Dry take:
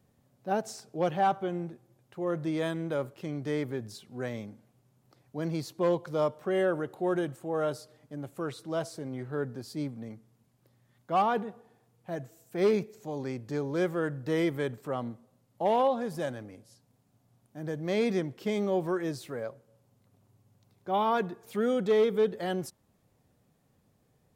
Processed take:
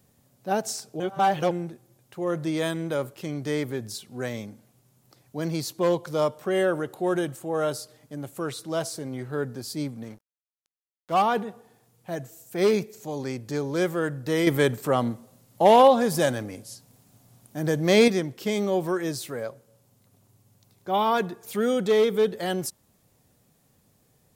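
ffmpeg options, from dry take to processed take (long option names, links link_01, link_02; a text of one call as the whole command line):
ffmpeg -i in.wav -filter_complex "[0:a]asettb=1/sr,asplit=3[link_01][link_02][link_03];[link_01]atrim=end=10.044[link_04];[link_02]atrim=start=10.04:end=11.14,asetpts=PTS-STARTPTS,afade=type=in:duration=0.004:curve=qsin,afade=type=out:start_time=1.096:duration=0.004:curve=qsin,aeval=exprs='sgn(val(0))*max(abs(val(0))-0.00237,0)':channel_layout=same[link_05];[link_03]atrim=start=11.136[link_06];[link_04][link_05]acrossfade=duration=0.004:curve1=hsin:curve2=qsin[link_07];[link_07][link_06]acrossfade=duration=0.004:curve1=qsin:curve2=hsin,asplit=5[link_08][link_09][link_10][link_11][link_12];[link_08]atrim=end=1.002[link_13];[link_09]atrim=start=0.998:end=1.512,asetpts=PTS-STARTPTS,areverse[link_14];[link_10]atrim=start=1.508:end=14.472[link_15];[link_11]atrim=start=14.468:end=18.082,asetpts=PTS-STARTPTS,volume=6.5dB[link_16];[link_12]atrim=start=18.078[link_17];[link_13][link_14]acrossfade=duration=0.004:curve1=hsin:curve2=hsin[link_18];[link_18][link_15]acrossfade=duration=0.004:curve1=hsin:curve2=hsin[link_19];[link_19][link_16]acrossfade=duration=0.004:curve1=hsin:curve2=hsin[link_20];[link_20][link_17]acrossfade=duration=0.004:curve1=hsin:curve2=hsin,highshelf=frequency=3900:gain=10.5,volume=3.5dB" out.wav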